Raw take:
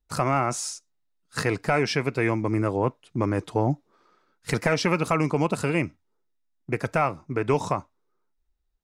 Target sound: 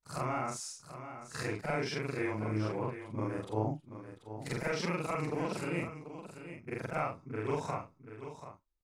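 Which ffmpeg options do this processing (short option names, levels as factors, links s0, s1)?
-af "afftfilt=real='re':imag='-im':win_size=4096:overlap=0.75,aecho=1:1:736:0.282,volume=0.473"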